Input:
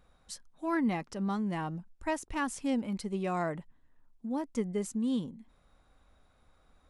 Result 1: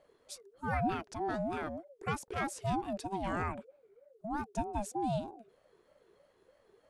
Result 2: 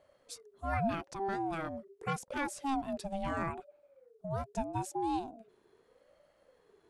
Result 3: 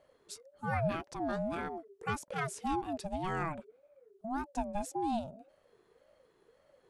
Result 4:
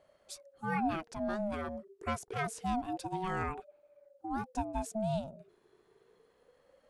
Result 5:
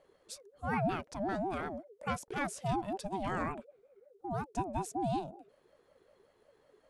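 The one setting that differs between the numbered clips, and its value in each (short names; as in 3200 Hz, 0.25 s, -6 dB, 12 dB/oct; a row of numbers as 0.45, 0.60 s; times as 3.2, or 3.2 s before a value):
ring modulator with a swept carrier, at: 3.2, 0.8, 1.8, 0.27, 5.4 Hz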